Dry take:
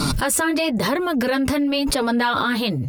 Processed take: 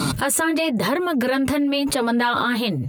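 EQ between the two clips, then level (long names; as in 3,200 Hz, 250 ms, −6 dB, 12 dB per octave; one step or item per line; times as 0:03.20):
high-pass filter 90 Hz 12 dB per octave
parametric band 5,300 Hz −10 dB 0.26 octaves
0.0 dB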